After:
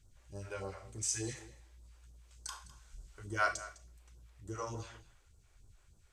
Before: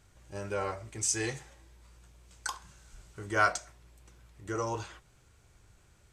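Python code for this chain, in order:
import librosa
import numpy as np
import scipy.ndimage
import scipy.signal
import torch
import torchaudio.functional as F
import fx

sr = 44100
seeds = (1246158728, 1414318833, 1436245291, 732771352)

p1 = fx.low_shelf(x, sr, hz=65.0, db=8.5)
p2 = fx.rev_schroeder(p1, sr, rt60_s=0.37, comb_ms=27, drr_db=8.0)
p3 = fx.phaser_stages(p2, sr, stages=2, low_hz=120.0, high_hz=2200.0, hz=3.4, feedback_pct=25)
p4 = p3 + fx.echo_single(p3, sr, ms=206, db=-17.0, dry=0)
y = p4 * librosa.db_to_amplitude(-6.5)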